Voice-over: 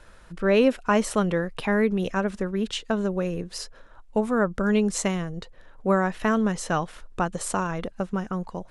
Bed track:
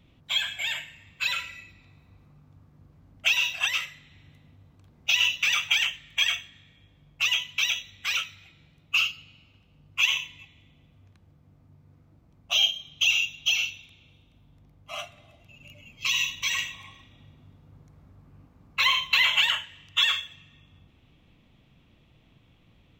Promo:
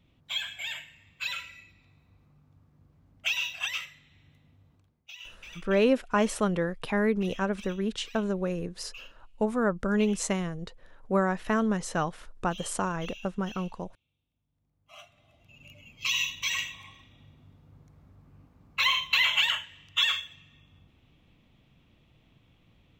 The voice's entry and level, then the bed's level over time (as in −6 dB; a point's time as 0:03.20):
5.25 s, −3.5 dB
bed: 0:04.75 −6 dB
0:05.09 −23.5 dB
0:14.48 −23.5 dB
0:15.58 −2.5 dB